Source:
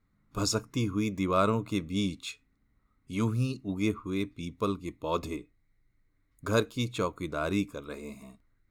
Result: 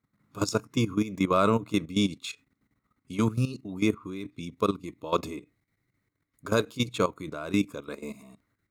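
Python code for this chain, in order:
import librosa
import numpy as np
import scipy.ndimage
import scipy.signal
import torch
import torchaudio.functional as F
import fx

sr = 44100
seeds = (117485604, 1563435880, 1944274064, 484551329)

y = fx.level_steps(x, sr, step_db=14)
y = scipy.signal.sosfilt(scipy.signal.butter(2, 110.0, 'highpass', fs=sr, output='sos'), y)
y = y * 10.0 ** (6.5 / 20.0)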